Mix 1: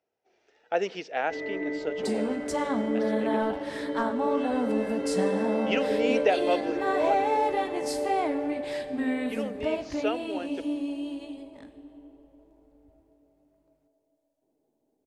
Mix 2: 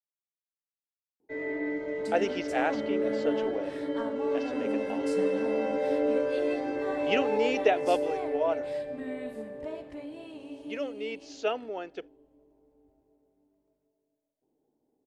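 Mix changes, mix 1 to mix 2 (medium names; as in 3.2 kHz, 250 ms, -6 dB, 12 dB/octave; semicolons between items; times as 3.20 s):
speech: entry +1.40 s; second sound -10.5 dB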